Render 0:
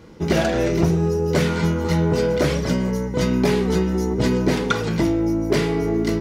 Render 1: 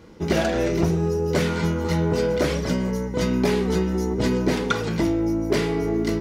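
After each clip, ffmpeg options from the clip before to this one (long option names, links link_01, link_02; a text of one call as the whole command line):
ffmpeg -i in.wav -af "equalizer=frequency=140:width_type=o:width=0.25:gain=-7,volume=-2dB" out.wav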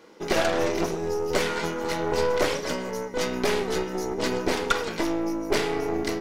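ffmpeg -i in.wav -af "highpass=390,aeval=exprs='0.335*(cos(1*acos(clip(val(0)/0.335,-1,1)))-cos(1*PI/2))+0.0473*(cos(6*acos(clip(val(0)/0.335,-1,1)))-cos(6*PI/2))':channel_layout=same" out.wav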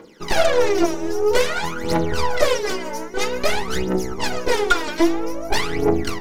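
ffmpeg -i in.wav -af "aphaser=in_gain=1:out_gain=1:delay=3.4:decay=0.78:speed=0.51:type=triangular,volume=1dB" out.wav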